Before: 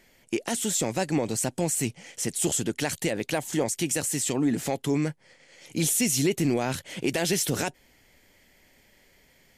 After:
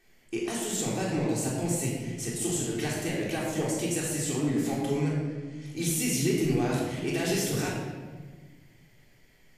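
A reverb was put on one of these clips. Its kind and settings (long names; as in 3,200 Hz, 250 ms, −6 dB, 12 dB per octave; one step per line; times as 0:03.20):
rectangular room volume 1,300 cubic metres, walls mixed, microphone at 3.6 metres
level −9.5 dB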